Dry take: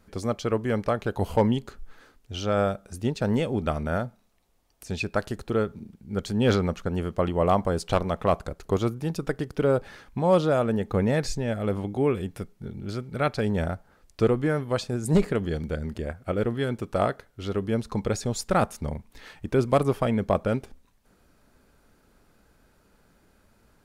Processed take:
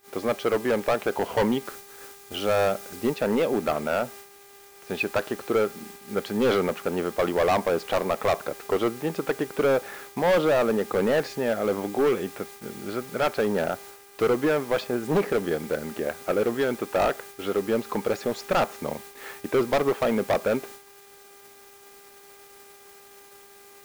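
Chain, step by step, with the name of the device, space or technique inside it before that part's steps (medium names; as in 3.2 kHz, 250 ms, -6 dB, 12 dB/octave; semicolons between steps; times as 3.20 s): aircraft radio (band-pass 330–2600 Hz; hard clipper -24.5 dBFS, distortion -7 dB; mains buzz 400 Hz, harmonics 6, -54 dBFS -5 dB/octave; white noise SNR 20 dB; gate -49 dBFS, range -20 dB); 1.65–3.14 s: tone controls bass +3 dB, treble +3 dB; trim +7 dB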